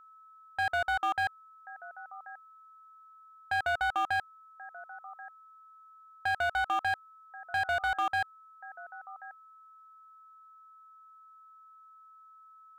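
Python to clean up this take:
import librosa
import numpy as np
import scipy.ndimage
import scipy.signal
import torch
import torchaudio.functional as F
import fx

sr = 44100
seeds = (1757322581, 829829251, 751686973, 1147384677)

y = fx.fix_declip(x, sr, threshold_db=-25.0)
y = fx.notch(y, sr, hz=1300.0, q=30.0)
y = fx.fix_echo_inverse(y, sr, delay_ms=1084, level_db=-19.0)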